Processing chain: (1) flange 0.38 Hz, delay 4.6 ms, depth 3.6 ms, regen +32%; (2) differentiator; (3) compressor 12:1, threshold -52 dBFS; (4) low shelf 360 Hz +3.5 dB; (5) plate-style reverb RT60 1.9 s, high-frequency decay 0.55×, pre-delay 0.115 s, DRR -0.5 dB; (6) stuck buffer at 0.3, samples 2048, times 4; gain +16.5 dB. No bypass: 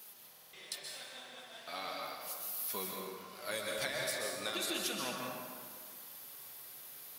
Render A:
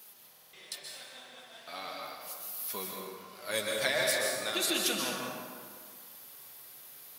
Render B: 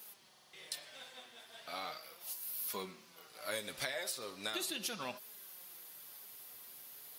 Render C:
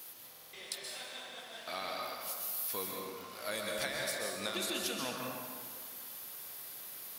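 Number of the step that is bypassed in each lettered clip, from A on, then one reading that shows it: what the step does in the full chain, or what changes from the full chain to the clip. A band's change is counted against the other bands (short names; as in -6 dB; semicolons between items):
3, crest factor change +1.5 dB; 5, crest factor change +3.5 dB; 1, loudness change +1.0 LU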